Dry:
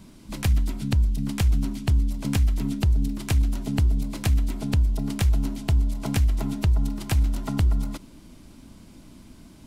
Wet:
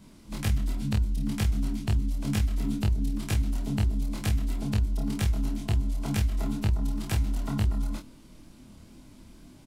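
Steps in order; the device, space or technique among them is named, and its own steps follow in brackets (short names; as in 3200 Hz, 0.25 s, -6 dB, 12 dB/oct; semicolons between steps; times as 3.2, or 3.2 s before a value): double-tracked vocal (doubler 28 ms -4.5 dB; chorus 2.1 Hz, delay 19.5 ms, depth 7 ms); gain -1.5 dB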